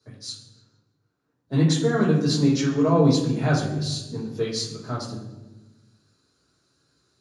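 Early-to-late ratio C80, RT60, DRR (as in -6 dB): 7.0 dB, 1.1 s, -8.0 dB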